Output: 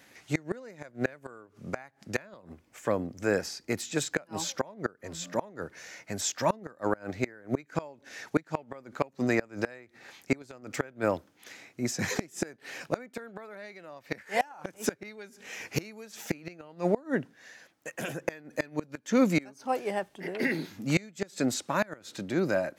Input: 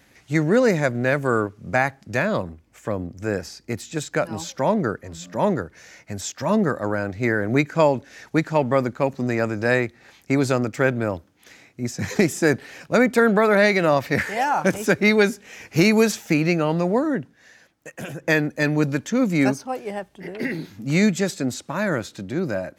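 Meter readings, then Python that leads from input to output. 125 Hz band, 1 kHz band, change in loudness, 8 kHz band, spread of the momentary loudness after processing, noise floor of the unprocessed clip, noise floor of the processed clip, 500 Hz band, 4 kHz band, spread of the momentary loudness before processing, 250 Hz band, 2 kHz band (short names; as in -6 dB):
-12.5 dB, -10.0 dB, -10.5 dB, -4.0 dB, 16 LU, -58 dBFS, -65 dBFS, -11.0 dB, -7.5 dB, 13 LU, -11.0 dB, -11.5 dB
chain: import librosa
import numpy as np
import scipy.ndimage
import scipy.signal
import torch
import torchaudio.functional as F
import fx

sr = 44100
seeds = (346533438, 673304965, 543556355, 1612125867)

y = fx.highpass(x, sr, hz=270.0, slope=6)
y = fx.gate_flip(y, sr, shuts_db=-13.0, range_db=-27)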